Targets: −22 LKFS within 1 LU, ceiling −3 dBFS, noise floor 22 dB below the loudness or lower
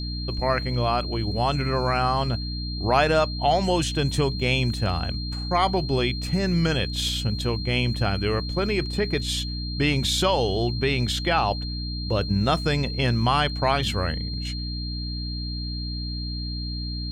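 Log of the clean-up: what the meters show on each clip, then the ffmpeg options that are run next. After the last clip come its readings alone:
mains hum 60 Hz; hum harmonics up to 300 Hz; level of the hum −28 dBFS; interfering tone 4,200 Hz; level of the tone −34 dBFS; integrated loudness −24.5 LKFS; sample peak −7.5 dBFS; target loudness −22.0 LKFS
→ -af "bandreject=frequency=60:width_type=h:width=6,bandreject=frequency=120:width_type=h:width=6,bandreject=frequency=180:width_type=h:width=6,bandreject=frequency=240:width_type=h:width=6,bandreject=frequency=300:width_type=h:width=6"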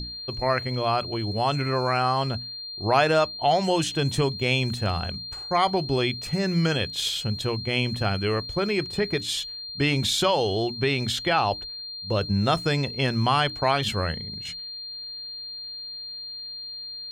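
mains hum none found; interfering tone 4,200 Hz; level of the tone −34 dBFS
→ -af "bandreject=frequency=4200:width=30"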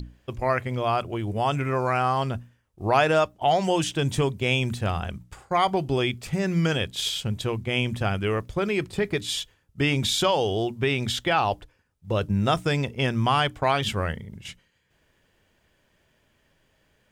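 interfering tone none found; integrated loudness −25.0 LKFS; sample peak −8.0 dBFS; target loudness −22.0 LKFS
→ -af "volume=3dB"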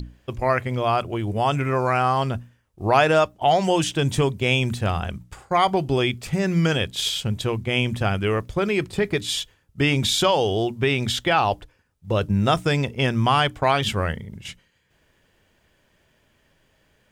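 integrated loudness −22.0 LKFS; sample peak −5.0 dBFS; background noise floor −64 dBFS

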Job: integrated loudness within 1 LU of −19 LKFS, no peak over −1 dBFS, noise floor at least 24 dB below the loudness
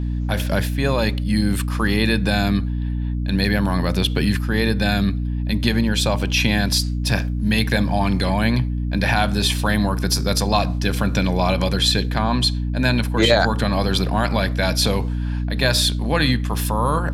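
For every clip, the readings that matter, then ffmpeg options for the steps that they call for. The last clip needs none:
mains hum 60 Hz; hum harmonics up to 300 Hz; level of the hum −20 dBFS; integrated loudness −20.0 LKFS; sample peak −2.5 dBFS; target loudness −19.0 LKFS
→ -af "bandreject=frequency=60:width_type=h:width=4,bandreject=frequency=120:width_type=h:width=4,bandreject=frequency=180:width_type=h:width=4,bandreject=frequency=240:width_type=h:width=4,bandreject=frequency=300:width_type=h:width=4"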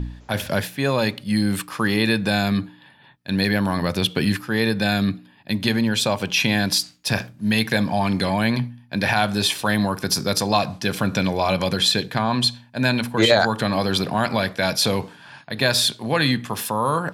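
mains hum none found; integrated loudness −21.0 LKFS; sample peak −3.5 dBFS; target loudness −19.0 LKFS
→ -af "volume=2dB"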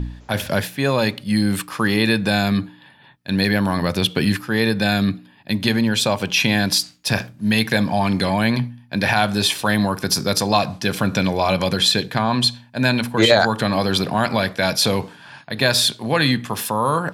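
integrated loudness −19.0 LKFS; sample peak −1.5 dBFS; background noise floor −49 dBFS

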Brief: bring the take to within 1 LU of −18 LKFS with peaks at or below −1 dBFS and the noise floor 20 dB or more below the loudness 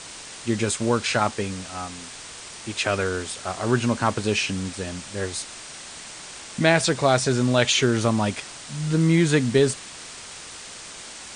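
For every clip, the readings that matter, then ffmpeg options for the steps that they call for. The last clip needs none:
background noise floor −40 dBFS; target noise floor −43 dBFS; integrated loudness −23.0 LKFS; sample peak −4.0 dBFS; target loudness −18.0 LKFS
→ -af "afftdn=noise_reduction=6:noise_floor=-40"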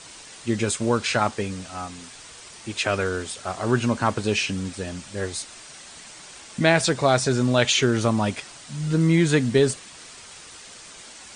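background noise floor −44 dBFS; integrated loudness −23.0 LKFS; sample peak −4.5 dBFS; target loudness −18.0 LKFS
→ -af "volume=5dB,alimiter=limit=-1dB:level=0:latency=1"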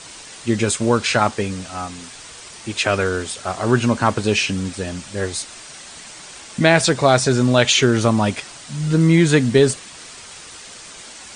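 integrated loudness −18.0 LKFS; sample peak −1.0 dBFS; background noise floor −39 dBFS

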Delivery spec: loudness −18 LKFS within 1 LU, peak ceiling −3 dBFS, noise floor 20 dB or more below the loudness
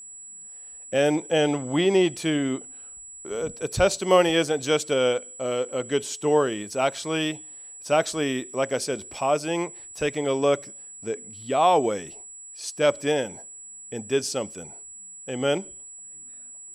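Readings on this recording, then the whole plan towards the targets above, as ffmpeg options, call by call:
interfering tone 7,800 Hz; level of the tone −40 dBFS; integrated loudness −25.0 LKFS; sample peak −5.0 dBFS; target loudness −18.0 LKFS
→ -af "bandreject=frequency=7800:width=30"
-af "volume=7dB,alimiter=limit=-3dB:level=0:latency=1"

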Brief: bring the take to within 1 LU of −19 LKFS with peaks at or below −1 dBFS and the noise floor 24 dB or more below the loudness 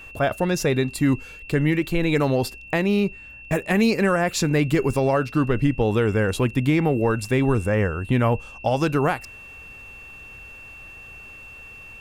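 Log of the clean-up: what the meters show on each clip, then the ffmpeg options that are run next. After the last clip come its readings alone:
interfering tone 2,700 Hz; level of the tone −40 dBFS; integrated loudness −22.0 LKFS; sample peak −7.5 dBFS; target loudness −19.0 LKFS
→ -af "bandreject=frequency=2700:width=30"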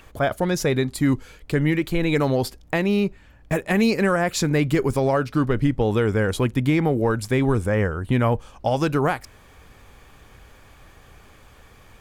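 interfering tone none found; integrated loudness −22.0 LKFS; sample peak −7.5 dBFS; target loudness −19.0 LKFS
→ -af "volume=3dB"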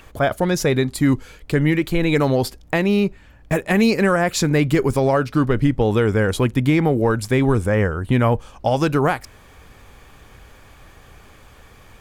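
integrated loudness −19.0 LKFS; sample peak −4.5 dBFS; background noise floor −47 dBFS

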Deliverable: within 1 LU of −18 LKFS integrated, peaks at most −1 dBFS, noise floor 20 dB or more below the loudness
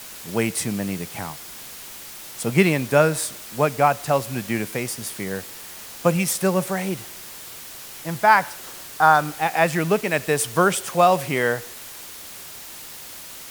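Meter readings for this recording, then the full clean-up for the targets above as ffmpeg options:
background noise floor −39 dBFS; target noise floor −42 dBFS; integrated loudness −21.5 LKFS; sample peak −1.5 dBFS; target loudness −18.0 LKFS
→ -af "afftdn=noise_reduction=6:noise_floor=-39"
-af "volume=3.5dB,alimiter=limit=-1dB:level=0:latency=1"

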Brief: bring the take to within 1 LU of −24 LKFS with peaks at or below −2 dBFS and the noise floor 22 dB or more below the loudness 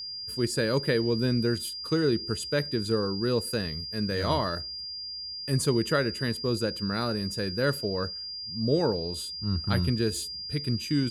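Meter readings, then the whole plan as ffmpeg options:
interfering tone 4,800 Hz; level of the tone −35 dBFS; integrated loudness −28.5 LKFS; sample peak −12.5 dBFS; target loudness −24.0 LKFS
→ -af "bandreject=frequency=4800:width=30"
-af "volume=4.5dB"

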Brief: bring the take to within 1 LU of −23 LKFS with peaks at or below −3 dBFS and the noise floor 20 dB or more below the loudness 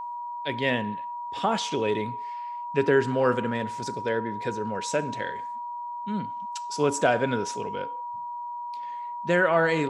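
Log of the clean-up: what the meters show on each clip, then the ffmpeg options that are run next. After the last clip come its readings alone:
interfering tone 960 Hz; level of the tone −32 dBFS; integrated loudness −28.0 LKFS; sample peak −8.0 dBFS; target loudness −23.0 LKFS
→ -af "bandreject=frequency=960:width=30"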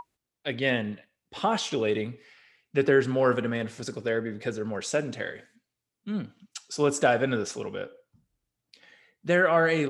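interfering tone none found; integrated loudness −27.5 LKFS; sample peak −8.5 dBFS; target loudness −23.0 LKFS
→ -af "volume=4.5dB"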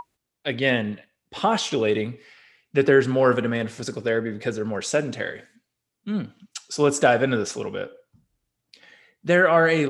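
integrated loudness −23.0 LKFS; sample peak −4.0 dBFS; background noise floor −82 dBFS

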